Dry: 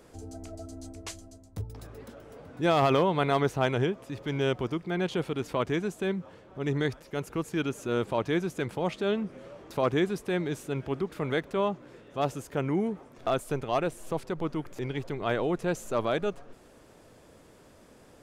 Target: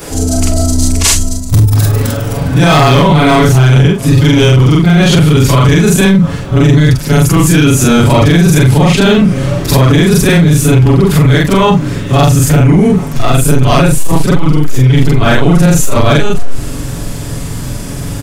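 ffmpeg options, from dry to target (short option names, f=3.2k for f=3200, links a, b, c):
-filter_complex "[0:a]afftfilt=real='re':imag='-im':win_size=4096:overlap=0.75,asubboost=boost=6.5:cutoff=180,asplit=2[a][b];[b]volume=25dB,asoftclip=hard,volume=-25dB,volume=-9dB[c];[a][c]amix=inputs=2:normalize=0,highshelf=f=4.3k:g=10.5,aecho=1:1:7.1:0.45,acompressor=threshold=-29dB:ratio=5,apsyclip=31.5dB,volume=-2dB"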